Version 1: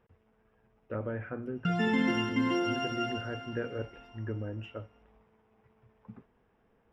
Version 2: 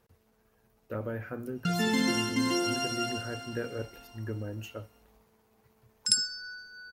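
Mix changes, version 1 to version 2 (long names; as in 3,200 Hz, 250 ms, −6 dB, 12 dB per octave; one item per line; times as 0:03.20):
speech: remove high-frequency loss of the air 51 metres
second sound: unmuted
master: remove Savitzky-Golay smoothing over 25 samples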